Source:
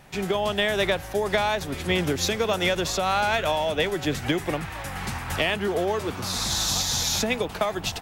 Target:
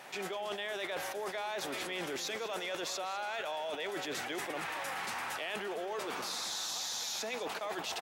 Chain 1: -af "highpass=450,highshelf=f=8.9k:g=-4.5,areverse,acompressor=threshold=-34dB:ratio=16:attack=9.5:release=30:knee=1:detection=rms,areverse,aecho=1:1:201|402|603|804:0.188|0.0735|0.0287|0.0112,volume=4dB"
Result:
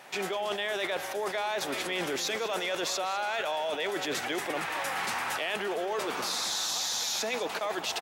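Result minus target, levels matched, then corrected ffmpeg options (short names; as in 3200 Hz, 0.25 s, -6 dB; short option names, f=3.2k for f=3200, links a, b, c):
compressor: peak gain reduction -6.5 dB
-af "highpass=450,highshelf=f=8.9k:g=-4.5,areverse,acompressor=threshold=-41dB:ratio=16:attack=9.5:release=30:knee=1:detection=rms,areverse,aecho=1:1:201|402|603|804:0.188|0.0735|0.0287|0.0112,volume=4dB"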